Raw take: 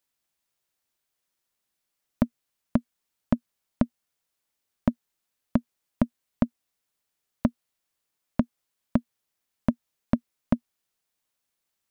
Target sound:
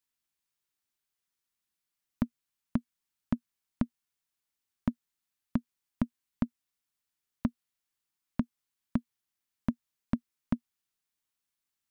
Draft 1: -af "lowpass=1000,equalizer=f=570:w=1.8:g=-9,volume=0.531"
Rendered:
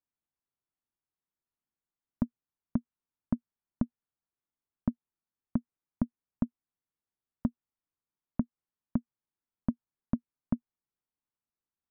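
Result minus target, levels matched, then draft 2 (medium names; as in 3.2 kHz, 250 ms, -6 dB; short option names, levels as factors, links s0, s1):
1 kHz band -3.0 dB
-af "equalizer=f=570:w=1.8:g=-9,volume=0.531"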